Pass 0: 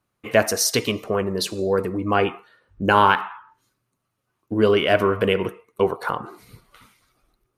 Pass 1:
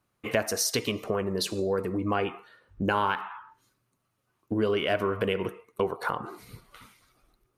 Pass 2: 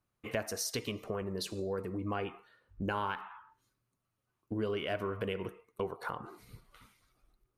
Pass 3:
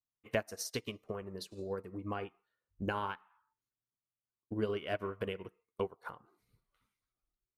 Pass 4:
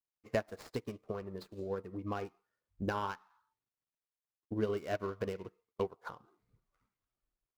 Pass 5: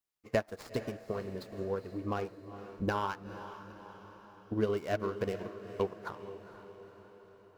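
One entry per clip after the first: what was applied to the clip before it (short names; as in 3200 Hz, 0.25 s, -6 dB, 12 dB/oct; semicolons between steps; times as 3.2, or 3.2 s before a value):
compressor 2.5:1, threshold -27 dBFS, peak gain reduction 11.5 dB
low shelf 84 Hz +9 dB; gain -9 dB
upward expander 2.5:1, over -46 dBFS; gain +3.5 dB
median filter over 15 samples; gain +1 dB
diffused feedback echo 0.469 s, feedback 57%, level -12 dB; gain +3 dB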